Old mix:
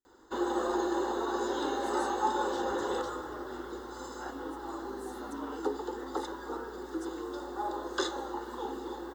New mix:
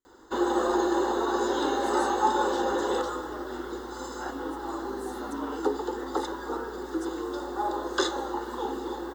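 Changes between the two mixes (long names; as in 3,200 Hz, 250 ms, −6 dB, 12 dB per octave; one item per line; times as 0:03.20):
speech +4.5 dB
first sound +5.5 dB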